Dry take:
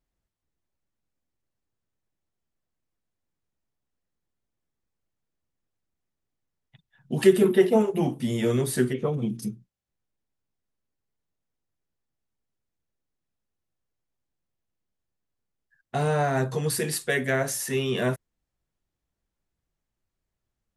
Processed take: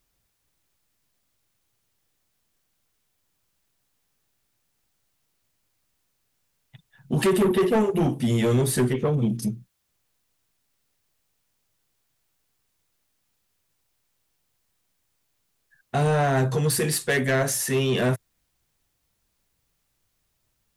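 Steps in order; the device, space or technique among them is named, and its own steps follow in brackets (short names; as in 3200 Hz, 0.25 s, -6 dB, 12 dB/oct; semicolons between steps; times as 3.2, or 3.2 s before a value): open-reel tape (soft clip -21.5 dBFS, distortion -8 dB; bell 110 Hz +4 dB; white noise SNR 47 dB); gain +5 dB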